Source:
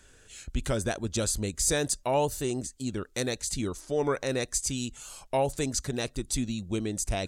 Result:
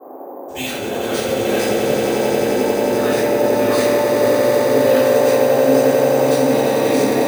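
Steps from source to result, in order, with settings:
feedback delay that plays each chunk backwards 303 ms, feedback 81%, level −5.5 dB
noise gate −37 dBFS, range −53 dB
high-pass filter 62 Hz
noise reduction from a noise print of the clip's start 14 dB
meter weighting curve A
treble cut that deepens with the level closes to 470 Hz, closed at −26 dBFS
bass and treble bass −4 dB, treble +13 dB
compressor whose output falls as the input rises −39 dBFS, ratio −1
noise in a band 280–860 Hz −50 dBFS
echo that builds up and dies away 89 ms, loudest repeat 8, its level −9 dB
convolution reverb RT60 1.3 s, pre-delay 3 ms, DRR −17.5 dB
bad sample-rate conversion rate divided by 3×, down filtered, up hold
level −4 dB

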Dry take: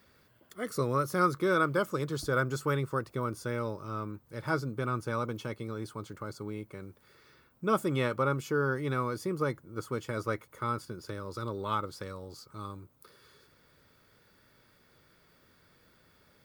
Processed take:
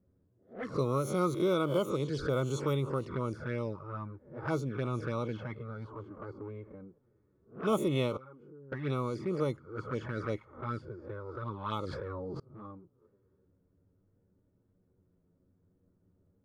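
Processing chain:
peak hold with a rise ahead of every peak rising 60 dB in 0.41 s
0:08.17–0:08.72: output level in coarse steps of 24 dB
0:10.11–0:11.03: dynamic equaliser 1,200 Hz, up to −5 dB, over −45 dBFS, Q 1.8
low-pass that shuts in the quiet parts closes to 300 Hz, open at −25 dBFS
flanger swept by the level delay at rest 11.4 ms, full sweep at −27.5 dBFS
0:11.85–0:12.40: envelope flattener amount 100%

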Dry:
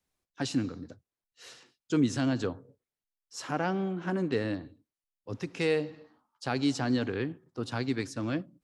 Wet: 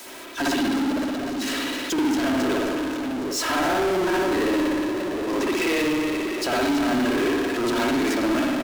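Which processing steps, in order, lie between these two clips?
high-pass filter 250 Hz 24 dB per octave
comb filter 3.1 ms, depth 62%
downward compressor, threshold −34 dBFS, peak gain reduction 13.5 dB
on a send: echo with a time of its own for lows and highs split 610 Hz, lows 762 ms, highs 269 ms, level −14.5 dB
on the sum: spring reverb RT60 1.1 s, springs 59 ms, chirp 75 ms, DRR −8 dB
power curve on the samples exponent 0.35

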